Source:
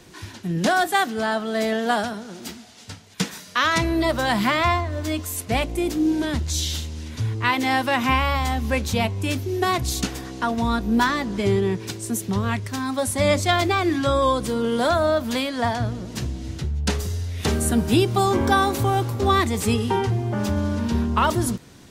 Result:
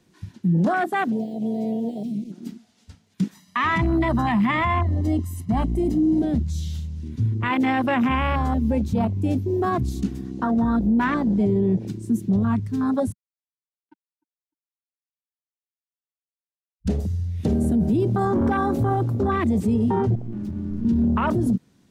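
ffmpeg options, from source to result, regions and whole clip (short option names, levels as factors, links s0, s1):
-filter_complex "[0:a]asettb=1/sr,asplit=3[s0][s1][s2];[s0]atrim=end=1.124[s3];[s1]atrim=start=1.12:end=2.32,asetpts=PTS-STARTPTS,afade=t=in:d=0.004:c=qsin,afade=t=out:st=1.196:d=0.004:c=qsin,acrusher=bits=5:mix=0:aa=0.5,acompressor=threshold=0.0501:ratio=4:attack=3.2:release=140:knee=1:detection=peak,asuperstop=centerf=1200:order=12:qfactor=0.82[s4];[s2]atrim=start=2.316[s5];[s3][s4]acrossfade=d=0.004:c1=hsin:c2=qsin[s6];[s6][s5]acrossfade=d=0.004:c1=qsin:c2=hsin,asettb=1/sr,asplit=3[s7][s8][s9];[s7]atrim=end=3.344[s10];[s8]atrim=start=3.34:end=6.22,asetpts=PTS-STARTPTS,afade=t=in:d=0.004:c=qsin,afade=t=out:st=2.876:d=0.004:c=qsin,agate=range=0.0224:threshold=0.0158:ratio=3:release=100:detection=peak,aecho=1:1:1:0.91,atrim=end_sample=127008,acompressor=mode=upward:threshold=0.0316:ratio=2.5:attack=3.2:release=140:knee=2.83:detection=peak[s11];[s9]atrim=start=6.216[s12];[s10][s11]acrossfade=d=0.004:c1=hsin:c2=qsin[s13];[s13][s12]acrossfade=d=0.004:c1=qsin:c2=hsin,asettb=1/sr,asplit=3[s14][s15][s16];[s14]atrim=end=13.124[s17];[s15]atrim=start=13.12:end=16.86,asetpts=PTS-STARTPTS,afade=t=in:d=0.004:c=qsin,afade=t=out:st=3.736:d=0.004:c=qsin,asplit=3[s18][s19][s20];[s18]bandpass=f=300:t=q:w=8,volume=1[s21];[s19]bandpass=f=870:t=q:w=8,volume=0.501[s22];[s20]bandpass=f=2240:t=q:w=8,volume=0.355[s23];[s21][s22][s23]amix=inputs=3:normalize=0,acrusher=bits=2:mix=0:aa=0.5,asplit=2[s24][s25];[s25]adelay=302,lowpass=f=1000:p=1,volume=0.0668,asplit=2[s26][s27];[s27]adelay=302,lowpass=f=1000:p=1,volume=0.31[s28];[s24][s26][s28]amix=inputs=3:normalize=0,atrim=end_sample=164934[s29];[s16]atrim=start=16.856[s30];[s17][s29]acrossfade=d=0.004:c1=hsin:c2=qsin[s31];[s31][s30]acrossfade=d=0.004:c1=qsin:c2=hsin,asettb=1/sr,asplit=3[s32][s33][s34];[s32]atrim=end=20.154[s35];[s33]atrim=start=20.15:end=20.85,asetpts=PTS-STARTPTS,afade=t=in:d=0.004:c=qsin,afade=t=out:st=0.696:d=0.004:c=qsin,aeval=exprs='(tanh(11.2*val(0)+0.25)-tanh(0.25))/11.2':c=same,aeval=exprs='max(val(0),0)':c=same,asplit=2[s36][s37];[s37]adelay=13,volume=0.211[s38];[s36][s38]amix=inputs=2:normalize=0,atrim=end_sample=30870[s39];[s34]atrim=start=20.846[s40];[s35][s39]acrossfade=d=0.004:c1=hsin:c2=qsin[s41];[s41][s40]acrossfade=d=0.004:c1=qsin:c2=hsin,afwtdn=0.0708,equalizer=f=200:w=1.3:g=9,alimiter=limit=0.2:level=0:latency=1:release=12"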